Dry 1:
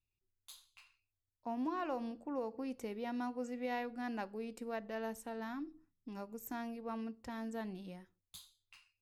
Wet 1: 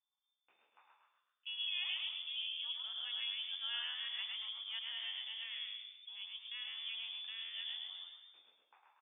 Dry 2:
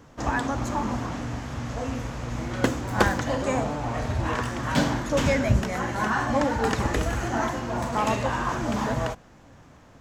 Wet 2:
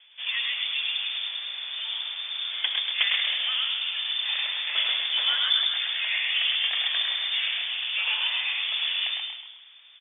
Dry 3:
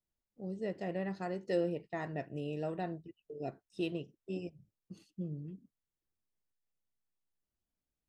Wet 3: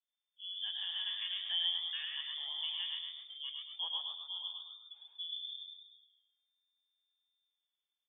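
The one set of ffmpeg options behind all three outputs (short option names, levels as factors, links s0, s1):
-filter_complex "[0:a]asplit=2[s0][s1];[s1]asplit=6[s2][s3][s4][s5][s6][s7];[s2]adelay=131,afreqshift=-91,volume=0.631[s8];[s3]adelay=262,afreqshift=-182,volume=0.292[s9];[s4]adelay=393,afreqshift=-273,volume=0.133[s10];[s5]adelay=524,afreqshift=-364,volume=0.0617[s11];[s6]adelay=655,afreqshift=-455,volume=0.0282[s12];[s7]adelay=786,afreqshift=-546,volume=0.013[s13];[s8][s9][s10][s11][s12][s13]amix=inputs=6:normalize=0[s14];[s0][s14]amix=inputs=2:normalize=0,lowpass=f=3100:t=q:w=0.5098,lowpass=f=3100:t=q:w=0.6013,lowpass=f=3100:t=q:w=0.9,lowpass=f=3100:t=q:w=2.563,afreqshift=-3600,highpass=610,asplit=2[s15][s16];[s16]aecho=0:1:105|210|315:0.562|0.129|0.0297[s17];[s15][s17]amix=inputs=2:normalize=0,volume=0.596"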